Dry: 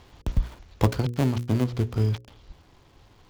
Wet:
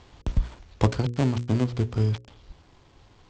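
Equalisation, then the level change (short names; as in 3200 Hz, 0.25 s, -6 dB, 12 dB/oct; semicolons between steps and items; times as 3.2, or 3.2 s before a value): steep low-pass 8200 Hz 72 dB/oct; 0.0 dB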